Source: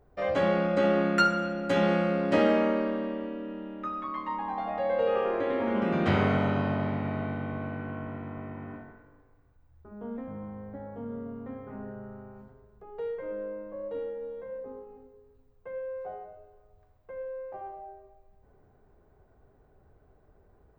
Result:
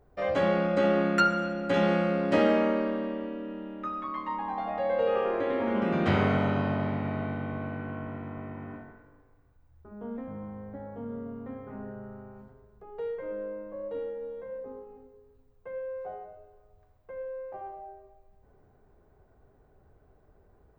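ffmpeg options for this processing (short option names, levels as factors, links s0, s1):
-filter_complex "[0:a]asettb=1/sr,asplit=3[s0][s1][s2];[s0]atrim=end=1.204[s3];[s1]atrim=start=1.2:end=1.74,asetpts=PTS-STARTPTS,afade=t=in:d=0.004:c=qsin,afade=t=out:st=0.536:d=0.004:c=qsin,acrossover=split=4300[s4][s5];[s5]acompressor=threshold=0.00178:ratio=4:attack=1:release=60[s6];[s4][s6]amix=inputs=2:normalize=0[s7];[s2]atrim=start=1.736[s8];[s3][s7]acrossfade=d=0.004:c1=hsin:c2=qsin[s9];[s9][s8]acrossfade=d=0.004:c1=qsin:c2=hsin"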